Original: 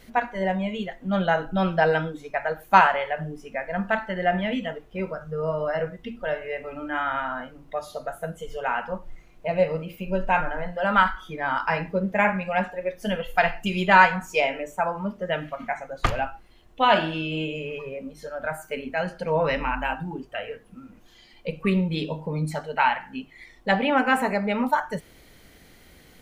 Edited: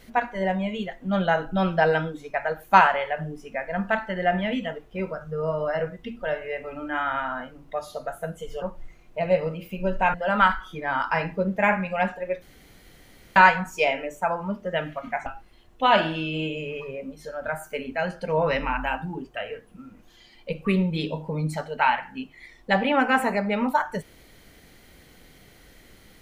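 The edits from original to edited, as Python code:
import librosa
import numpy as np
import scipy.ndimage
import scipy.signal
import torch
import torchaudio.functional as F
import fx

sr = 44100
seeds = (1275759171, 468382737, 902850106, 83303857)

y = fx.edit(x, sr, fx.cut(start_s=8.62, length_s=0.28),
    fx.cut(start_s=10.42, length_s=0.28),
    fx.room_tone_fill(start_s=12.98, length_s=0.94),
    fx.cut(start_s=15.82, length_s=0.42), tone=tone)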